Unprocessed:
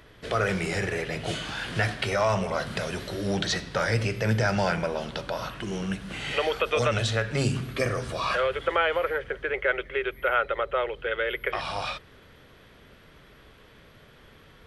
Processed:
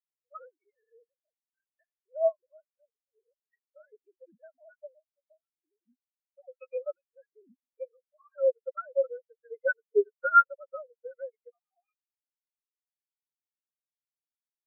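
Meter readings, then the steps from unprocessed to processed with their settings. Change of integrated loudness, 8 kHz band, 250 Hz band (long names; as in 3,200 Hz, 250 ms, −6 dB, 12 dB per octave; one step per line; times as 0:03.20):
0.0 dB, below −40 dB, below −20 dB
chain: three sine waves on the formant tracks
every bin expanded away from the loudest bin 4 to 1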